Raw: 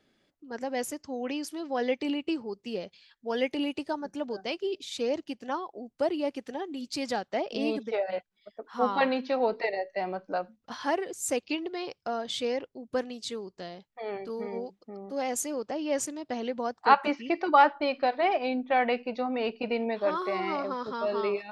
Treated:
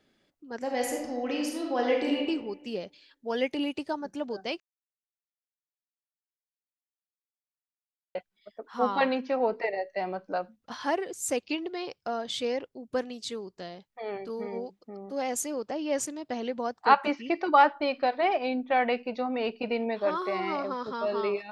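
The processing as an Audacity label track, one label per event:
0.590000	2.280000	thrown reverb, RT60 1.1 s, DRR −0.5 dB
4.600000	8.150000	silence
9.150000	9.780000	parametric band 3,900 Hz −11 dB 0.53 octaves

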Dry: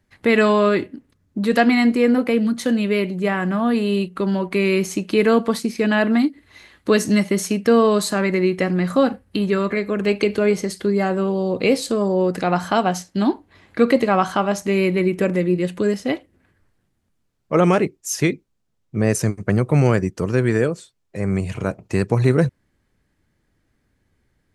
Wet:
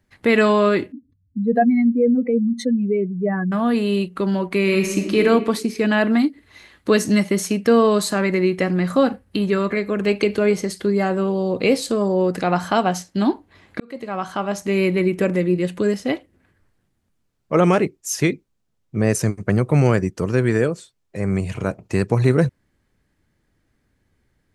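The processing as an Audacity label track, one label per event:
0.920000	3.520000	expanding power law on the bin magnitudes exponent 2.5
4.620000	5.200000	thrown reverb, RT60 1.3 s, DRR 3 dB
13.800000	14.830000	fade in

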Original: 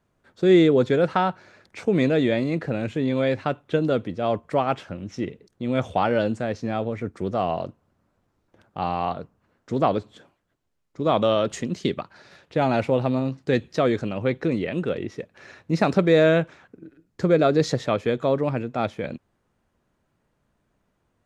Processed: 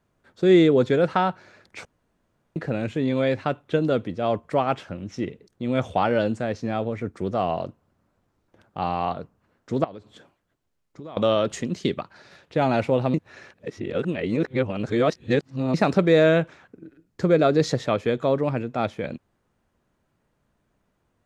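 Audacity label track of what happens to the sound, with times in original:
1.850000	2.560000	fill with room tone
9.840000	11.170000	downward compressor, threshold −36 dBFS
13.140000	15.740000	reverse

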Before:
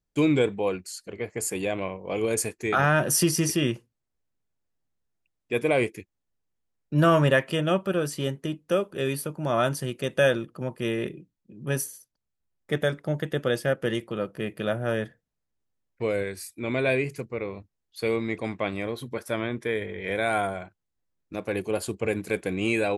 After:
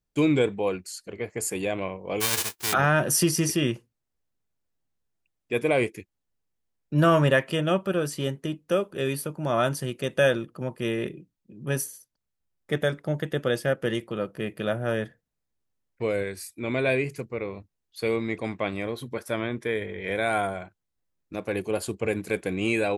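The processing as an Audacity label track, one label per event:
2.200000	2.720000	spectral envelope flattened exponent 0.1

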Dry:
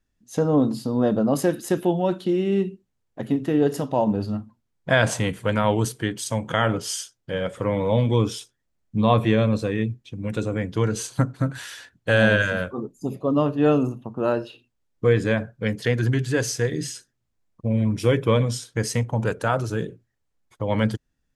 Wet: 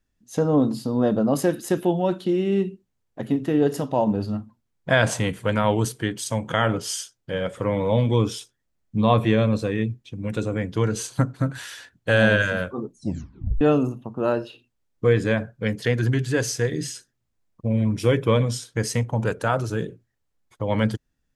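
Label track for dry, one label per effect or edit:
12.910000	12.910000	tape stop 0.70 s

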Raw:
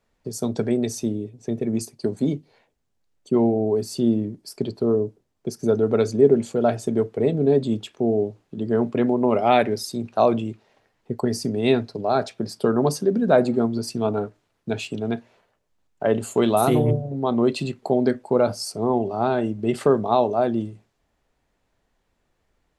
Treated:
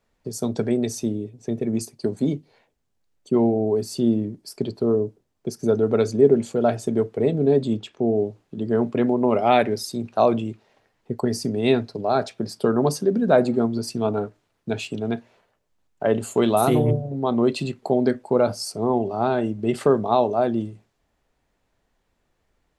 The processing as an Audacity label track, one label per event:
7.730000	8.150000	high-frequency loss of the air 54 metres

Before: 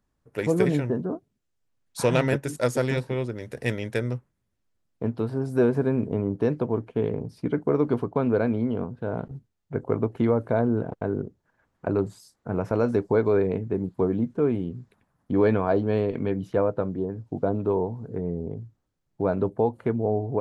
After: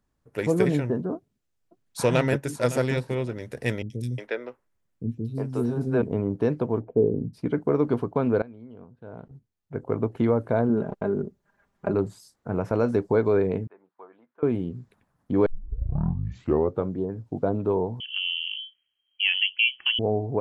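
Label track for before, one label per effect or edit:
1.150000	2.270000	delay throw 560 ms, feedback 30%, level −15 dB
3.820000	6.020000	three-band delay without the direct sound lows, highs, mids 80/360 ms, splits 320/4,100 Hz
6.800000	7.330000	low-pass with resonance 810 Hz → 200 Hz, resonance Q 2
8.420000	10.100000	fade in quadratic, from −20 dB
10.690000	11.940000	comb filter 5 ms, depth 57%
13.670000	14.430000	four-pole ladder band-pass 1,400 Hz, resonance 20%
15.460000	15.460000	tape start 1.44 s
18.000000	19.990000	voice inversion scrambler carrier 3,200 Hz

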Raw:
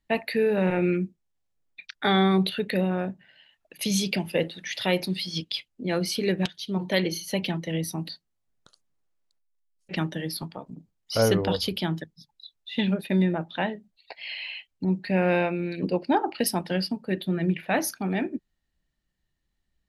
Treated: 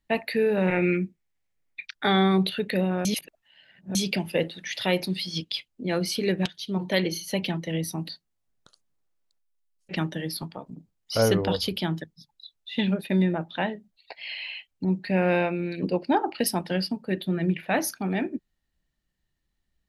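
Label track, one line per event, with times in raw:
0.680000	1.900000	parametric band 2,100 Hz +9.5 dB 0.58 octaves
3.050000	3.950000	reverse

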